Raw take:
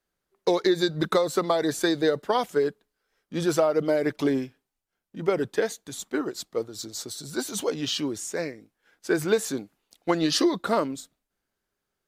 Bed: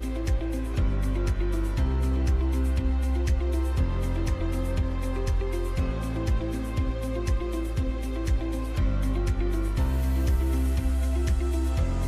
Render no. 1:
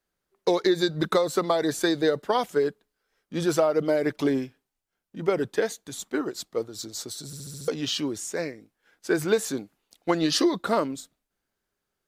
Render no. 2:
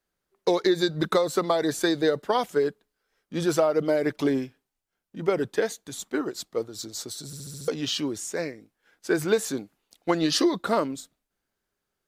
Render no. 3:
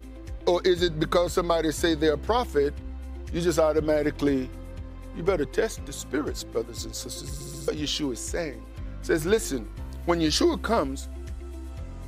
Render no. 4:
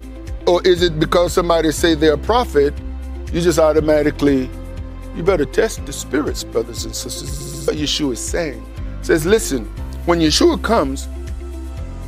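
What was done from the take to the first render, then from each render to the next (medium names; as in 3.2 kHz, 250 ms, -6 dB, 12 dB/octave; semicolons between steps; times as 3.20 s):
7.26 s: stutter in place 0.07 s, 6 plays
no audible change
add bed -12 dB
trim +9.5 dB; peak limiter -2 dBFS, peak gain reduction 2.5 dB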